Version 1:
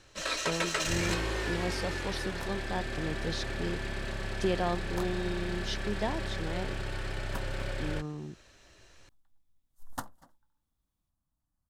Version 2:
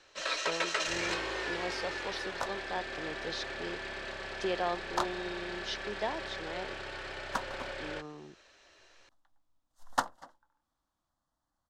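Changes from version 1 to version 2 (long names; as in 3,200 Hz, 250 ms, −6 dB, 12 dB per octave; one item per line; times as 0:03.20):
second sound +10.5 dB
master: add three-way crossover with the lows and the highs turned down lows −16 dB, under 350 Hz, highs −19 dB, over 6,900 Hz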